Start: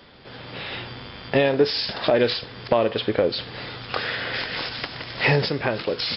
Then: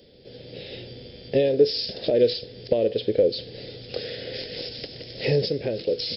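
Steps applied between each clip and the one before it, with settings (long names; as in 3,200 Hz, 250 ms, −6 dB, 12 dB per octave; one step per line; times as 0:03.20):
drawn EQ curve 290 Hz 0 dB, 500 Hz +7 dB, 1,100 Hz −27 dB, 1,800 Hz −12 dB, 6,000 Hz +5 dB
level −3.5 dB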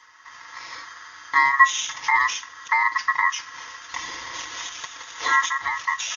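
comb filter 5 ms, depth 82%
ring modulation 1,500 Hz
level +2 dB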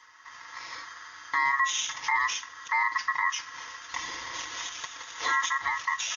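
brickwall limiter −13 dBFS, peak gain reduction 10.5 dB
level −3 dB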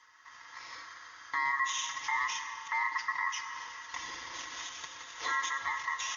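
convolution reverb RT60 4.1 s, pre-delay 79 ms, DRR 7.5 dB
level −6 dB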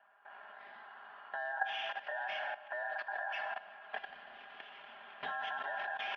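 low-pass that shuts in the quiet parts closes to 2,400 Hz, open at −28.5 dBFS
single-sideband voice off tune −290 Hz 520–3,500 Hz
output level in coarse steps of 14 dB
level +3 dB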